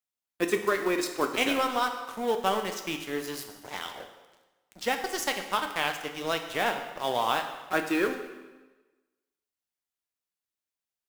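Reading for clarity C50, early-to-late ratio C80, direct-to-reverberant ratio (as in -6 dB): 8.0 dB, 10.0 dB, 5.0 dB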